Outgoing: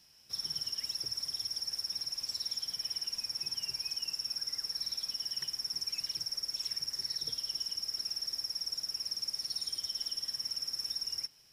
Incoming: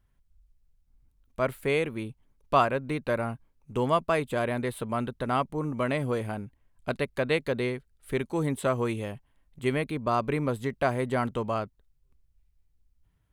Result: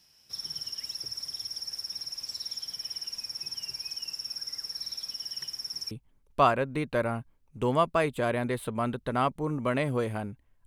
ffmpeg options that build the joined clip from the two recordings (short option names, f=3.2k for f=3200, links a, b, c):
-filter_complex "[0:a]apad=whole_dur=10.66,atrim=end=10.66,atrim=end=5.912[a];[1:a]atrim=start=2.048:end=6.8[b];[a][b]acrossfade=d=0.004:c1=hsin:c2=hsin"